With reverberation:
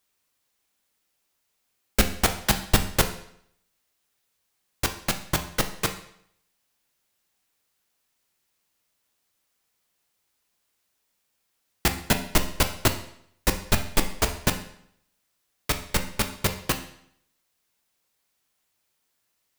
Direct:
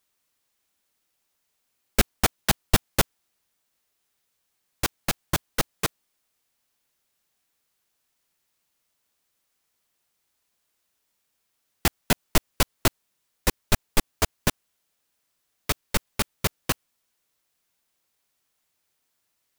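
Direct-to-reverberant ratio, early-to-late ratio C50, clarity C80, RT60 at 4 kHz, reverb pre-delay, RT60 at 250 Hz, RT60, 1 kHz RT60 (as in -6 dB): 6.0 dB, 11.0 dB, 14.0 dB, 0.65 s, 11 ms, 0.70 s, 0.70 s, 0.70 s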